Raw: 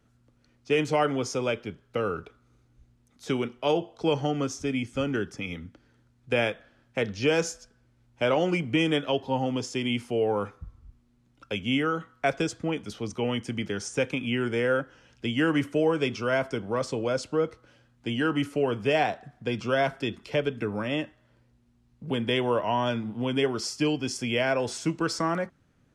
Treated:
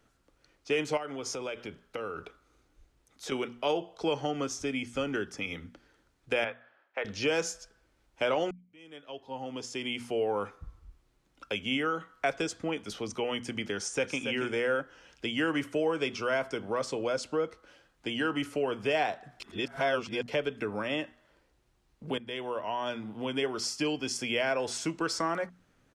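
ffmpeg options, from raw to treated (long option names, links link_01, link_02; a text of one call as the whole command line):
ffmpeg -i in.wav -filter_complex "[0:a]asettb=1/sr,asplit=3[link_01][link_02][link_03];[link_01]atrim=end=0.974[link_04];[link_02]atrim=start=0.97:end=3.32,asetpts=PTS-STARTPTS,afade=type=in:duration=0.004:curve=qsin,afade=type=out:start_time=2.346:duration=0.004:curve=qsin,acompressor=threshold=-33dB:ratio=4:attack=3.2:release=140:knee=1:detection=peak[link_05];[link_03]atrim=start=3.316[link_06];[link_04][link_05]acrossfade=duration=0.004:curve1=hsin:curve2=qsin[link_07];[link_07][link_06]acrossfade=duration=0.004:curve1=qsin:curve2=hsin,asettb=1/sr,asplit=3[link_08][link_09][link_10];[link_08]atrim=end=6.444[link_11];[link_09]atrim=start=6.44:end=7.05,asetpts=PTS-STARTPTS,afade=type=in:duration=0.004:curve=qsin,afade=type=out:start_time=0.606:duration=0.004:curve=qsin,highpass=660,lowpass=2000[link_12];[link_10]atrim=start=7.046[link_13];[link_11][link_12]acrossfade=duration=0.004:curve1=hsin:curve2=qsin[link_14];[link_14][link_13]acrossfade=duration=0.004:curve1=qsin:curve2=hsin,asplit=2[link_15][link_16];[link_16]afade=type=in:start_time=13.75:duration=0.01,afade=type=out:start_time=14.23:duration=0.01,aecho=0:1:280|560:0.354813|0.053222[link_17];[link_15][link_17]amix=inputs=2:normalize=0,asplit=5[link_18][link_19][link_20][link_21][link_22];[link_18]atrim=end=8.51,asetpts=PTS-STARTPTS,afade=type=out:start_time=8.506:duration=0.004:curve=hsin[link_23];[link_19]atrim=start=8.51:end=19.402,asetpts=PTS-STARTPTS,afade=type=in:duration=1.68:curve=qua[link_24];[link_20]atrim=start=19.398:end=20.282,asetpts=PTS-STARTPTS,areverse[link_25];[link_21]atrim=start=20.278:end=22.18,asetpts=PTS-STARTPTS,afade=type=out:start_time=1.898:duration=0.004:curve=hsin:silence=0.16788[link_26];[link_22]atrim=start=22.18,asetpts=PTS-STARTPTS,afade=type=in:duration=1.99:curve=qsin:silence=0.16788[link_27];[link_23][link_24]concat=n=2:v=0:a=1[link_28];[link_28][link_25]acrossfade=duration=0.004:curve1=hsin:curve2=hsin[link_29];[link_26][link_27]concat=n=2:v=0:a=1[link_30];[link_29][link_30]acrossfade=duration=0.004:curve1=hsin:curve2=hsin,equalizer=frequency=120:width_type=o:width=2.4:gain=-8.5,bandreject=frequency=60:width_type=h:width=6,bandreject=frequency=120:width_type=h:width=6,bandreject=frequency=180:width_type=h:width=6,bandreject=frequency=240:width_type=h:width=6,acompressor=threshold=-38dB:ratio=1.5,volume=3dB" out.wav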